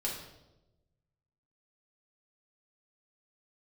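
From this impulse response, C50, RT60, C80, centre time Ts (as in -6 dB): 4.0 dB, 1.0 s, 7.0 dB, 42 ms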